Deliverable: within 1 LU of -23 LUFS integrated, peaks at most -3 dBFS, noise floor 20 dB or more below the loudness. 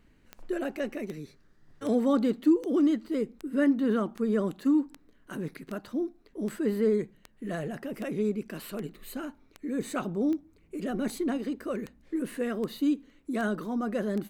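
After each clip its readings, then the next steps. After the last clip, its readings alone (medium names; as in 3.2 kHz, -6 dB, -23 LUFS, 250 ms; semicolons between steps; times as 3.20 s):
clicks found 19; loudness -30.0 LUFS; peak level -14.0 dBFS; loudness target -23.0 LUFS
-> de-click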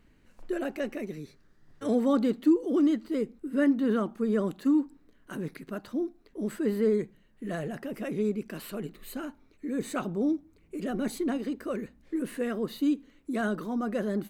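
clicks found 0; loudness -30.0 LUFS; peak level -14.0 dBFS; loudness target -23.0 LUFS
-> trim +7 dB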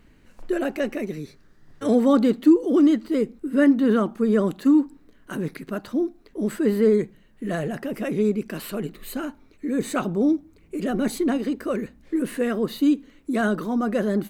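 loudness -23.0 LUFS; peak level -7.0 dBFS; noise floor -55 dBFS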